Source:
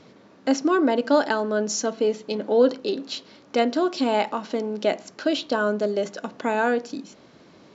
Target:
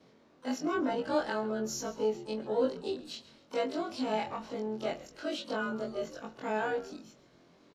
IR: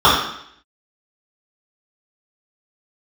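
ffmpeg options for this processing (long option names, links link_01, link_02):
-filter_complex "[0:a]afftfilt=real='re':imag='-im':win_size=2048:overlap=0.75,asplit=2[link_01][link_02];[link_02]asetrate=88200,aresample=44100,atempo=0.5,volume=-18dB[link_03];[link_01][link_03]amix=inputs=2:normalize=0,asplit=4[link_04][link_05][link_06][link_07];[link_05]adelay=134,afreqshift=-81,volume=-17.5dB[link_08];[link_06]adelay=268,afreqshift=-162,volume=-26.9dB[link_09];[link_07]adelay=402,afreqshift=-243,volume=-36.2dB[link_10];[link_04][link_08][link_09][link_10]amix=inputs=4:normalize=0,volume=-6.5dB"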